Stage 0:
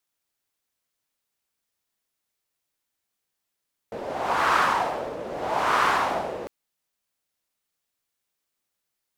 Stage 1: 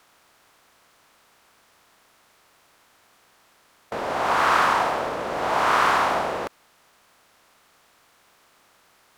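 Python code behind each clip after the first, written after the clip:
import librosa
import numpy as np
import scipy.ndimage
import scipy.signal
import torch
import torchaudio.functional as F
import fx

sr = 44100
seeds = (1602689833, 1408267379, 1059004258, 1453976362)

y = fx.bin_compress(x, sr, power=0.6)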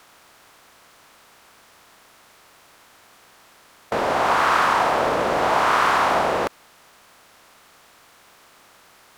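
y = fx.rider(x, sr, range_db=10, speed_s=0.5)
y = y * 10.0 ** (3.5 / 20.0)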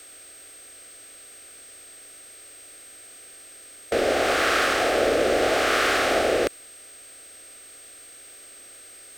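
y = x + 10.0 ** (-48.0 / 20.0) * np.sin(2.0 * np.pi * 8400.0 * np.arange(len(x)) / sr)
y = fx.fixed_phaser(y, sr, hz=400.0, stages=4)
y = y * 10.0 ** (4.0 / 20.0)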